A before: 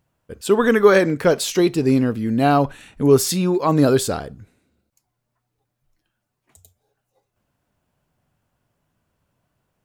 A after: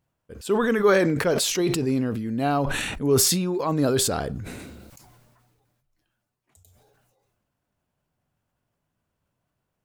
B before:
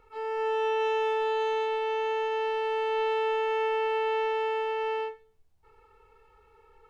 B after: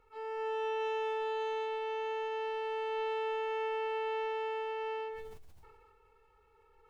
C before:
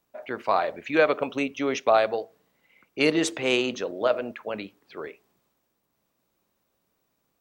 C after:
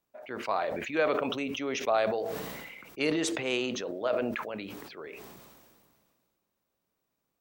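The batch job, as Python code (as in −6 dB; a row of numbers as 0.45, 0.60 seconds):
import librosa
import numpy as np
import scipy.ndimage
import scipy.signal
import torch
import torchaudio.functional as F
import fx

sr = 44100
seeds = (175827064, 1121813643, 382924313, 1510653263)

y = fx.sustainer(x, sr, db_per_s=29.0)
y = y * 10.0 ** (-7.5 / 20.0)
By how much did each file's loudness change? −5.0, −7.5, −6.0 LU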